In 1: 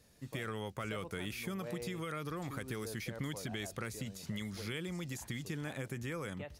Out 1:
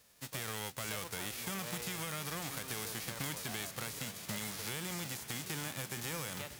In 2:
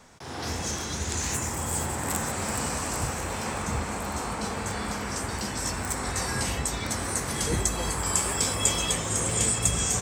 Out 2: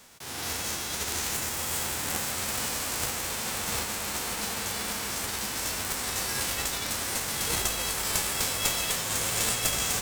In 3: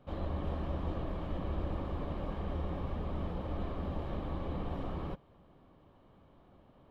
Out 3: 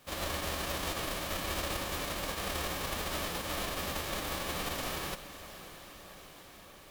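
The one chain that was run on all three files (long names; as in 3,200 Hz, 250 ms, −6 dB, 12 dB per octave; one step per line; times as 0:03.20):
spectral envelope flattened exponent 0.3
feedback delay with all-pass diffusion 608 ms, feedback 68%, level −14 dB
asymmetric clip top −31 dBFS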